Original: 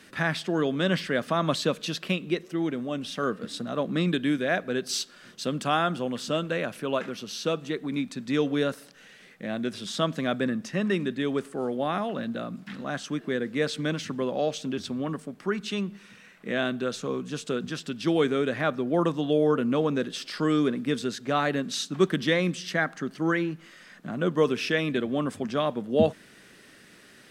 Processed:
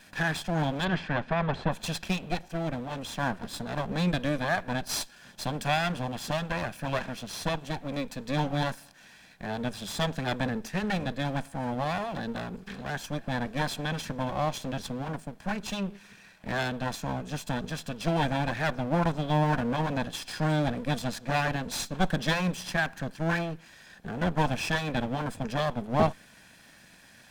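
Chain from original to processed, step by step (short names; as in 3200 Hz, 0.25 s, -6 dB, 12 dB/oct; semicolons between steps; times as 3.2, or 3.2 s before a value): minimum comb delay 1.2 ms; 0.84–1.71 LPF 3300 Hz -> 1800 Hz 12 dB/oct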